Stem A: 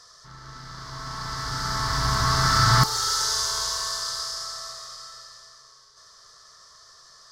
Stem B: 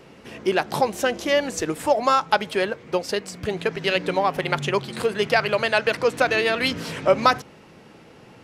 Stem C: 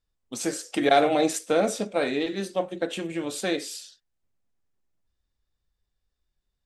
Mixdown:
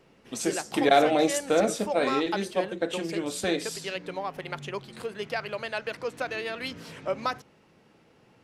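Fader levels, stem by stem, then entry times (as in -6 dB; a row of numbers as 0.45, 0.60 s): off, -12.0 dB, -0.5 dB; off, 0.00 s, 0.00 s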